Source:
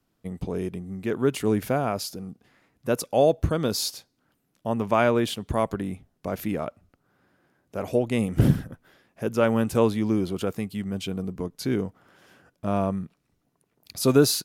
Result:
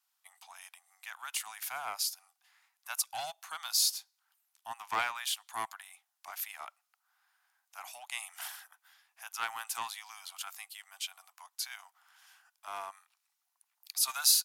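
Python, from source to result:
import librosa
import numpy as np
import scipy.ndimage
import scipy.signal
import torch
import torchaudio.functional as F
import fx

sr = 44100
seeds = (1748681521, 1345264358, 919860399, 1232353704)

y = scipy.signal.sosfilt(scipy.signal.butter(12, 760.0, 'highpass', fs=sr, output='sos'), x)
y = fx.high_shelf(y, sr, hz=3500.0, db=11.5)
y = fx.doppler_dist(y, sr, depth_ms=0.11)
y = y * 10.0 ** (-7.5 / 20.0)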